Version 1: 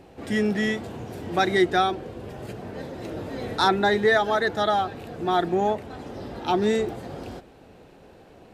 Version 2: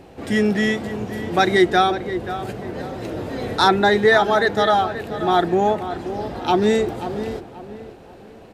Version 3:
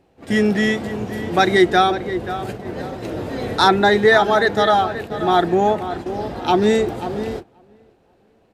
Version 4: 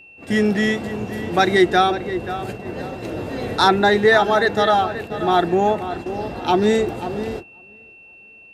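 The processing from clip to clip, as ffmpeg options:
ffmpeg -i in.wav -filter_complex "[0:a]asplit=2[link_01][link_02];[link_02]adelay=532,lowpass=frequency=2300:poles=1,volume=-11dB,asplit=2[link_03][link_04];[link_04]adelay=532,lowpass=frequency=2300:poles=1,volume=0.34,asplit=2[link_05][link_06];[link_06]adelay=532,lowpass=frequency=2300:poles=1,volume=0.34,asplit=2[link_07][link_08];[link_08]adelay=532,lowpass=frequency=2300:poles=1,volume=0.34[link_09];[link_01][link_03][link_05][link_07][link_09]amix=inputs=5:normalize=0,volume=5dB" out.wav
ffmpeg -i in.wav -af "agate=range=-16dB:threshold=-30dB:ratio=16:detection=peak,volume=1.5dB" out.wav
ffmpeg -i in.wav -af "aeval=exprs='val(0)+0.00794*sin(2*PI*2700*n/s)':channel_layout=same,volume=-1dB" out.wav

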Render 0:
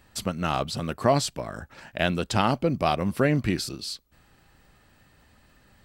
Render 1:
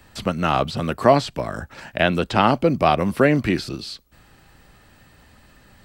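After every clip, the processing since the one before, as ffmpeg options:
ffmpeg -i in.wav -filter_complex "[0:a]acrossover=split=3700[link_01][link_02];[link_02]acompressor=threshold=-47dB:ratio=4:attack=1:release=60[link_03];[link_01][link_03]amix=inputs=2:normalize=0,acrossover=split=200|1100[link_04][link_05][link_06];[link_04]alimiter=level_in=6.5dB:limit=-24dB:level=0:latency=1,volume=-6.5dB[link_07];[link_07][link_05][link_06]amix=inputs=3:normalize=0,volume=7dB" out.wav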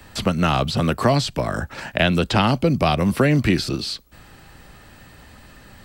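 ffmpeg -i in.wav -filter_complex "[0:a]acrossover=split=190|3000[link_01][link_02][link_03];[link_02]acompressor=threshold=-26dB:ratio=3[link_04];[link_01][link_04][link_03]amix=inputs=3:normalize=0,volume=6dB" out.wav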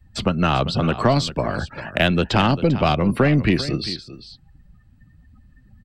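ffmpeg -i in.wav -af "afftdn=noise_reduction=27:noise_floor=-36,aecho=1:1:395:0.2,aeval=exprs='0.944*(cos(1*acos(clip(val(0)/0.944,-1,1)))-cos(1*PI/2))+0.0266*(cos(8*acos(clip(val(0)/0.944,-1,1)))-cos(8*PI/2))':channel_layout=same" out.wav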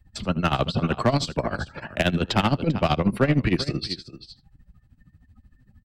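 ffmpeg -i in.wav -af "tremolo=f=13:d=0.84,asoftclip=type=hard:threshold=-11.5dB,aecho=1:1:78:0.1" out.wav

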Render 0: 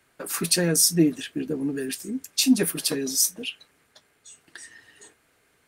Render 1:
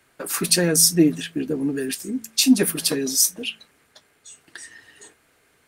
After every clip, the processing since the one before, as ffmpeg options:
ffmpeg -i in.wav -af "bandreject=frequency=55.75:width_type=h:width=4,bandreject=frequency=111.5:width_type=h:width=4,bandreject=frequency=167.25:width_type=h:width=4,bandreject=frequency=223:width_type=h:width=4,volume=3.5dB" out.wav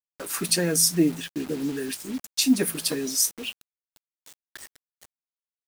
ffmpeg -i in.wav -af "acrusher=bits=5:mix=0:aa=0.000001,volume=-4.5dB" out.wav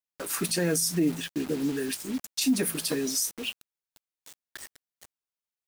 ffmpeg -i in.wav -af "alimiter=limit=-16.5dB:level=0:latency=1:release=43" out.wav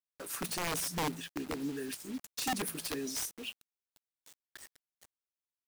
ffmpeg -i in.wav -af "aeval=exprs='(mod(8.91*val(0)+1,2)-1)/8.91':channel_layout=same,volume=-8.5dB" out.wav

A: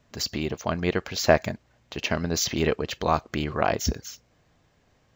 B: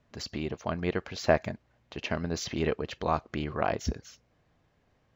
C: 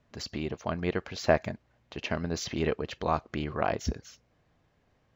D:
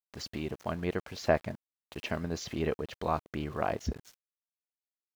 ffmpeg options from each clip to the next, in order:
ffmpeg -i in.wav -af "aemphasis=mode=reproduction:type=50fm,volume=-5dB" out.wav
ffmpeg -i in.wav -af anull out.wav
ffmpeg -i in.wav -af "aeval=exprs='val(0)*gte(abs(val(0)),0.00531)':channel_layout=same,adynamicequalizer=threshold=0.00708:dfrequency=1500:dqfactor=0.7:tfrequency=1500:tqfactor=0.7:attack=5:release=100:ratio=0.375:range=2.5:mode=cutabove:tftype=highshelf,volume=-2.5dB" out.wav

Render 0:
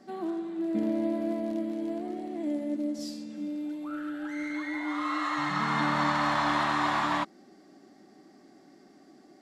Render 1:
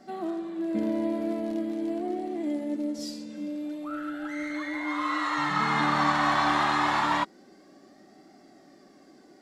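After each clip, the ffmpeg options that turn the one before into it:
ffmpeg -i in.wav -af "flanger=delay=1.4:depth=1.3:regen=54:speed=0.24:shape=triangular,volume=7dB" out.wav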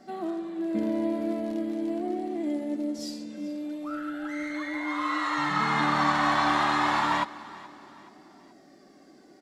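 ffmpeg -i in.wav -af "aecho=1:1:426|852|1278:0.112|0.0482|0.0207" out.wav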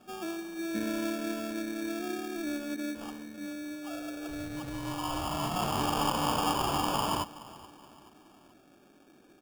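ffmpeg -i in.wav -af "acrusher=samples=22:mix=1:aa=0.000001,volume=-5dB" out.wav

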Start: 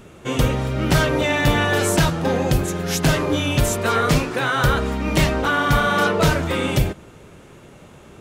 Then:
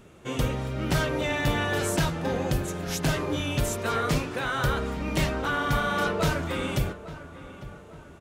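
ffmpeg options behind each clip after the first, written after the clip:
ffmpeg -i in.wav -filter_complex "[0:a]asplit=2[link_01][link_02];[link_02]adelay=851,lowpass=frequency=2300:poles=1,volume=-15dB,asplit=2[link_03][link_04];[link_04]adelay=851,lowpass=frequency=2300:poles=1,volume=0.47,asplit=2[link_05][link_06];[link_06]adelay=851,lowpass=frequency=2300:poles=1,volume=0.47,asplit=2[link_07][link_08];[link_08]adelay=851,lowpass=frequency=2300:poles=1,volume=0.47[link_09];[link_01][link_03][link_05][link_07][link_09]amix=inputs=5:normalize=0,volume=-8dB" out.wav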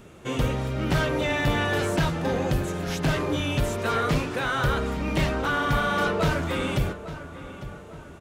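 ffmpeg -i in.wav -filter_complex "[0:a]asplit=2[link_01][link_02];[link_02]asoftclip=type=tanh:threshold=-29.5dB,volume=-5dB[link_03];[link_01][link_03]amix=inputs=2:normalize=0,acrossover=split=4200[link_04][link_05];[link_05]acompressor=threshold=-40dB:ratio=4:attack=1:release=60[link_06];[link_04][link_06]amix=inputs=2:normalize=0" out.wav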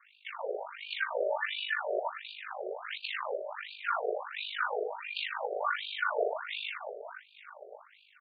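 ffmpeg -i in.wav -af "aeval=exprs='val(0)*sin(2*PI*25*n/s)':channel_layout=same,afftfilt=real='re*between(b*sr/1024,520*pow(3400/520,0.5+0.5*sin(2*PI*1.4*pts/sr))/1.41,520*pow(3400/520,0.5+0.5*sin(2*PI*1.4*pts/sr))*1.41)':imag='im*between(b*sr/1024,520*pow(3400/520,0.5+0.5*sin(2*PI*1.4*pts/sr))/1.41,520*pow(3400/520,0.5+0.5*sin(2*PI*1.4*pts/sr))*1.41)':win_size=1024:overlap=0.75,volume=2dB" out.wav

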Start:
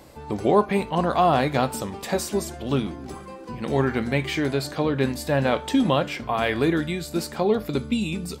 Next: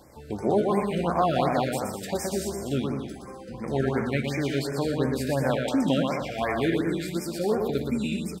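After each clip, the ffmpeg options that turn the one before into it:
ffmpeg -i in.wav -af "aecho=1:1:120|198|248.7|281.7|303.1:0.631|0.398|0.251|0.158|0.1,afftfilt=real='re*(1-between(b*sr/1024,910*pow(3600/910,0.5+0.5*sin(2*PI*2.8*pts/sr))/1.41,910*pow(3600/910,0.5+0.5*sin(2*PI*2.8*pts/sr))*1.41))':imag='im*(1-between(b*sr/1024,910*pow(3600/910,0.5+0.5*sin(2*PI*2.8*pts/sr))/1.41,910*pow(3600/910,0.5+0.5*sin(2*PI*2.8*pts/sr))*1.41))':win_size=1024:overlap=0.75,volume=-4.5dB" out.wav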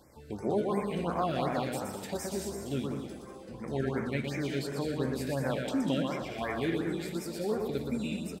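ffmpeg -i in.wav -filter_complex "[0:a]equalizer=frequency=730:width_type=o:width=0.77:gain=-2.5,asplit=8[link_01][link_02][link_03][link_04][link_05][link_06][link_07][link_08];[link_02]adelay=192,afreqshift=51,volume=-15dB[link_09];[link_03]adelay=384,afreqshift=102,volume=-19.2dB[link_10];[link_04]adelay=576,afreqshift=153,volume=-23.3dB[link_11];[link_05]adelay=768,afreqshift=204,volume=-27.5dB[link_12];[link_06]adelay=960,afreqshift=255,volume=-31.6dB[link_13];[link_07]adelay=1152,afreqshift=306,volume=-35.8dB[link_14];[link_08]adelay=1344,afreqshift=357,volume=-39.9dB[link_15];[link_01][link_09][link_10][link_11][link_12][link_13][link_14][link_15]amix=inputs=8:normalize=0,volume=-6dB" out.wav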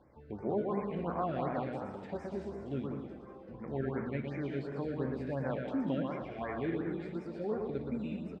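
ffmpeg -i in.wav -af "lowpass=1800,volume=-3.5dB" out.wav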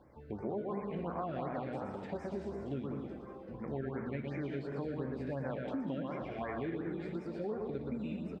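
ffmpeg -i in.wav -af "acompressor=threshold=-37dB:ratio=4,volume=2dB" out.wav

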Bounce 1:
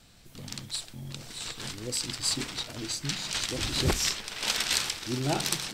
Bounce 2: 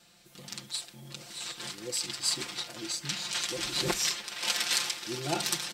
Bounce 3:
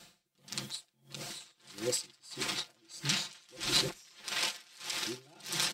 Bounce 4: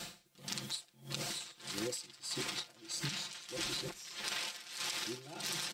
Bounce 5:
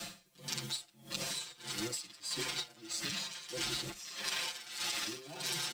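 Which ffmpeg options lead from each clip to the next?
ffmpeg -i in.wav -af "highpass=frequency=310:poles=1,aecho=1:1:5.7:0.8,volume=-3dB" out.wav
ffmpeg -i in.wav -af "alimiter=limit=-21dB:level=0:latency=1:release=48,aeval=exprs='val(0)*pow(10,-33*(0.5-0.5*cos(2*PI*1.6*n/s))/20)':channel_layout=same,volume=6dB" out.wav
ffmpeg -i in.wav -af "alimiter=level_in=1.5dB:limit=-24dB:level=0:latency=1:release=234,volume=-1.5dB,acompressor=threshold=-48dB:ratio=6,volume=11dB" out.wav
ffmpeg -i in.wav -filter_complex "[0:a]acrossover=split=110|1600|2100[link_01][link_02][link_03][link_04];[link_02]asoftclip=type=tanh:threshold=-39dB[link_05];[link_01][link_05][link_03][link_04]amix=inputs=4:normalize=0,acrusher=bits=5:mode=log:mix=0:aa=0.000001,asplit=2[link_06][link_07];[link_07]adelay=6.8,afreqshift=-1[link_08];[link_06][link_08]amix=inputs=2:normalize=1,volume=5dB" out.wav

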